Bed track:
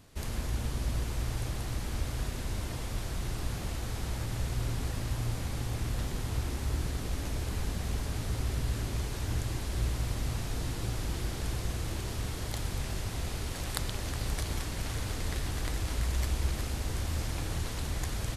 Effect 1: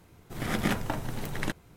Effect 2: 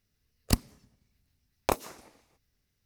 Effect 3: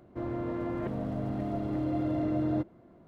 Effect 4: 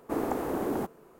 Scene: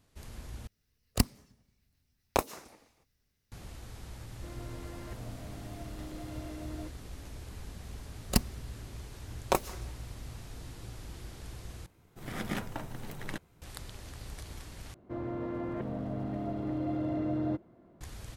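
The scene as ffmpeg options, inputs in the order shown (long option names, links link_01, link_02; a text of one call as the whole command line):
ffmpeg -i bed.wav -i cue0.wav -i cue1.wav -i cue2.wav -filter_complex "[2:a]asplit=2[link_01][link_02];[3:a]asplit=2[link_03][link_04];[0:a]volume=-11dB[link_05];[link_03]crystalizer=i=9.5:c=0[link_06];[link_02]aecho=1:1:5.4:0.48[link_07];[link_04]acontrast=46[link_08];[link_05]asplit=4[link_09][link_10][link_11][link_12];[link_09]atrim=end=0.674[link_13];[link_01]atrim=end=2.85,asetpts=PTS-STARTPTS,volume=-1dB[link_14];[link_10]atrim=start=3.516:end=11.864[link_15];[1:a]atrim=end=1.76,asetpts=PTS-STARTPTS,volume=-7.5dB[link_16];[link_11]atrim=start=13.616:end=14.944[link_17];[link_08]atrim=end=3.07,asetpts=PTS-STARTPTS,volume=-8.5dB[link_18];[link_12]atrim=start=18.006[link_19];[link_06]atrim=end=3.07,asetpts=PTS-STARTPTS,volume=-15.5dB,afade=type=in:duration=0.004:curve=hsin,afade=type=out:start_time=3.066:duration=0.004:curve=hsin,adelay=4260[link_20];[link_07]atrim=end=2.85,asetpts=PTS-STARTPTS,volume=-1dB,afade=type=in:duration=0.004:curve=hsin,afade=type=out:start_time=2.846:duration=0.004:curve=hsin,adelay=7830[link_21];[link_13][link_14]acrossfade=duration=0.004:curve1=hsin:curve2=hsin[link_22];[link_22][link_15]acrossfade=duration=0.004:curve1=hsin:curve2=hsin[link_23];[link_23][link_16]acrossfade=duration=0.004:curve1=hsin:curve2=hsin[link_24];[link_24][link_17]acrossfade=duration=0.004:curve1=hsin:curve2=hsin[link_25];[link_25][link_18]acrossfade=duration=0.004:curve1=hsin:curve2=hsin[link_26];[link_26][link_19]acrossfade=duration=0.004:curve1=hsin:curve2=hsin[link_27];[link_27][link_20][link_21]amix=inputs=3:normalize=0" out.wav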